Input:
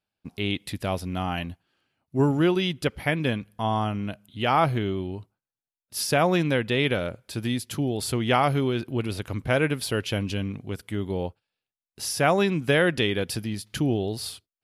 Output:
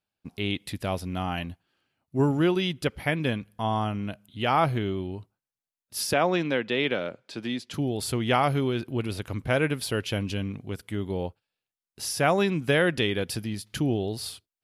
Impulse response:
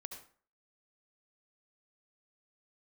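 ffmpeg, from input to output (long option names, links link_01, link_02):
-filter_complex "[0:a]asettb=1/sr,asplit=3[link_01][link_02][link_03];[link_01]atrim=end=6.134[link_04];[link_02]atrim=start=6.13:end=7.74,asetpts=PTS-STARTPTS,afade=type=in:duration=0.004:curve=qsin,afade=type=out:start_time=1.606:duration=0.004:curve=qsin,acrossover=split=170 6800:gain=0.0891 1 0.0708[link_05][link_06][link_07];[link_05][link_06][link_07]amix=inputs=3:normalize=0[link_08];[link_03]atrim=start=7.736[link_09];[link_04][link_08]acrossfade=duration=0.004:curve1=hsin:curve2=qsin[link_10];[link_10][link_09]acrossfade=duration=0.004:curve1=qsin:curve2=hsin,volume=-1.5dB"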